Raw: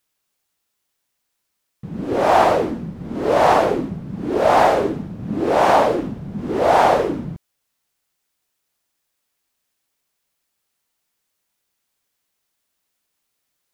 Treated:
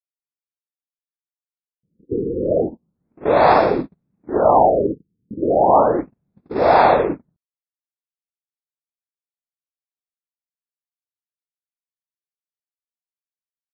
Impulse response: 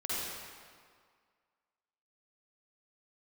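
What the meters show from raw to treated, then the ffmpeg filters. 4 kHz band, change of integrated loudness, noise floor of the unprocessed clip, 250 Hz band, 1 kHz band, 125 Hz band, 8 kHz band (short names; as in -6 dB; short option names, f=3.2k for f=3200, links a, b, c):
-6.0 dB, +0.5 dB, -75 dBFS, -1.0 dB, 0.0 dB, -2.5 dB, under -40 dB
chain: -af "asuperstop=centerf=3000:order=8:qfactor=5.1,agate=range=-42dB:threshold=-21dB:ratio=16:detection=peak,afftfilt=real='re*lt(b*sr/1024,490*pow(5500/490,0.5+0.5*sin(2*PI*0.34*pts/sr)))':imag='im*lt(b*sr/1024,490*pow(5500/490,0.5+0.5*sin(2*PI*0.34*pts/sr)))':win_size=1024:overlap=0.75,volume=1.5dB"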